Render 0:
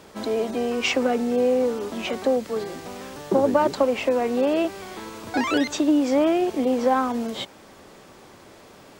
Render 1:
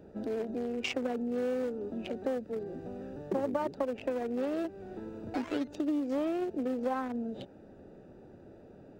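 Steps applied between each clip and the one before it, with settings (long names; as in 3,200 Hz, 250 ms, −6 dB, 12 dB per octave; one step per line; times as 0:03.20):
adaptive Wiener filter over 41 samples
downward compressor 2 to 1, threshold −36 dBFS, peak gain reduction 12 dB
level −1 dB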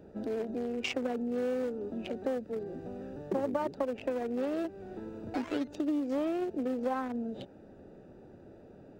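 no processing that can be heard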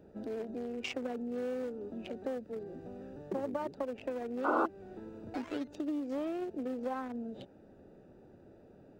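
sound drawn into the spectrogram noise, 0:04.44–0:04.66, 230–1,500 Hz −25 dBFS
level −4.5 dB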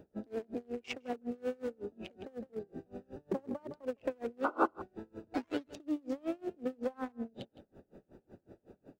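single-tap delay 161 ms −15.5 dB
tremolo with a sine in dB 5.4 Hz, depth 30 dB
level +4.5 dB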